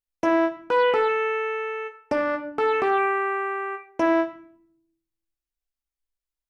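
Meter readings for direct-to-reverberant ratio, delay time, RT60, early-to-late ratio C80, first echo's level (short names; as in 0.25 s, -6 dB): 6.0 dB, none, 0.60 s, 15.0 dB, none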